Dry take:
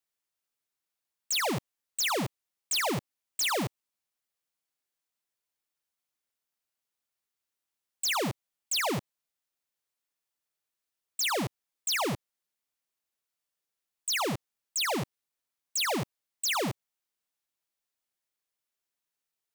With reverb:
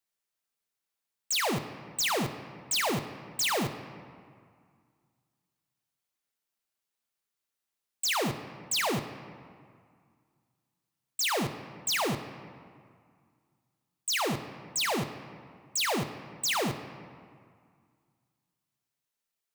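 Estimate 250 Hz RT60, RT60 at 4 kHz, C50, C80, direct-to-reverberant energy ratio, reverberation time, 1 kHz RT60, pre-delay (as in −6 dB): 2.3 s, 1.3 s, 10.0 dB, 11.5 dB, 7.5 dB, 2.0 s, 2.2 s, 4 ms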